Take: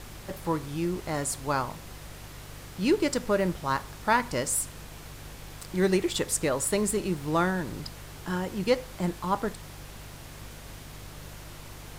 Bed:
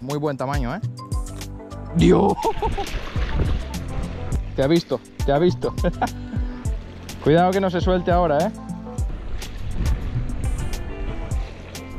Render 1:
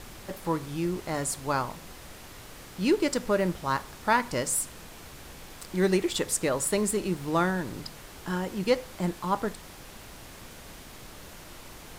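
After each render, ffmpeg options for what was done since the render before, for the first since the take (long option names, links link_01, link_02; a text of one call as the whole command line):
ffmpeg -i in.wav -af "bandreject=frequency=50:width_type=h:width=4,bandreject=frequency=100:width_type=h:width=4,bandreject=frequency=150:width_type=h:width=4" out.wav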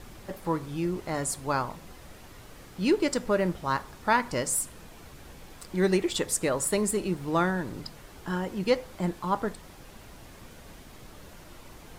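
ffmpeg -i in.wav -af "afftdn=noise_reduction=6:noise_floor=-47" out.wav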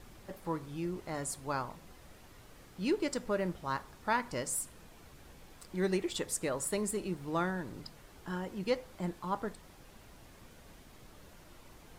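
ffmpeg -i in.wav -af "volume=-7.5dB" out.wav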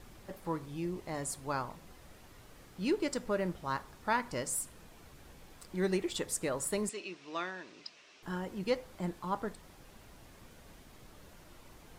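ffmpeg -i in.wav -filter_complex "[0:a]asettb=1/sr,asplit=3[link_01][link_02][link_03];[link_01]atrim=end=0.654[link_04];[link_02]atrim=start=0.65:end=1.25,asetpts=PTS-STARTPTS,afade=type=in:duration=0.004:curve=qsin,afade=type=out:start_time=0.596:duration=0.004:curve=qsin,equalizer=frequency=1400:width=7.8:gain=-8.5[link_05];[link_03]atrim=start=1.246[link_06];[link_04][link_05]acrossfade=duration=0.004:curve1=hsin:curve2=qsin[link_07];[link_07][link_06]acrossfade=duration=0.004:curve1=qsin:curve2=hsin,asettb=1/sr,asplit=3[link_08][link_09][link_10];[link_08]atrim=end=6.894[link_11];[link_09]atrim=start=6.89:end=8.23,asetpts=PTS-STARTPTS,afade=type=in:duration=0.004:curve=qsin,afade=type=out:start_time=1.336:duration=0.004:curve=qsin,highpass=470,equalizer=frequency=500:width_type=q:width=4:gain=-6,equalizer=frequency=840:width_type=q:width=4:gain=-9,equalizer=frequency=1400:width_type=q:width=4:gain=-4,equalizer=frequency=2600:width_type=q:width=4:gain=9,equalizer=frequency=3800:width_type=q:width=4:gain=3,equalizer=frequency=5600:width_type=q:width=4:gain=5,lowpass=frequency=6700:width=0.5412,lowpass=frequency=6700:width=1.3066[link_12];[link_10]atrim=start=8.226[link_13];[link_11][link_12]acrossfade=duration=0.004:curve1=hsin:curve2=qsin[link_14];[link_14][link_13]acrossfade=duration=0.004:curve1=qsin:curve2=hsin" out.wav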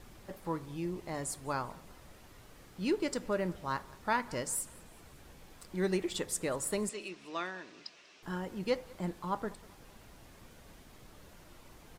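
ffmpeg -i in.wav -af "aecho=1:1:193|386|579:0.0631|0.0309|0.0151" out.wav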